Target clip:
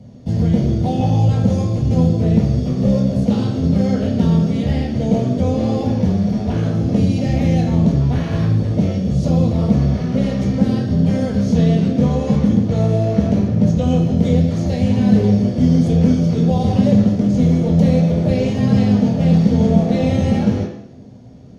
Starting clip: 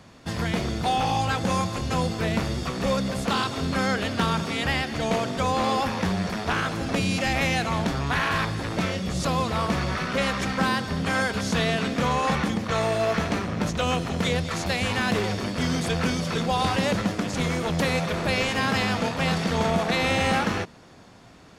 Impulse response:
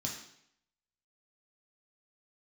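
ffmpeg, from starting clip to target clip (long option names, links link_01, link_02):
-filter_complex "[0:a]lowshelf=frequency=750:width_type=q:width=1.5:gain=13[link_01];[1:a]atrim=start_sample=2205,asetrate=40572,aresample=44100[link_02];[link_01][link_02]afir=irnorm=-1:irlink=0,volume=-10dB"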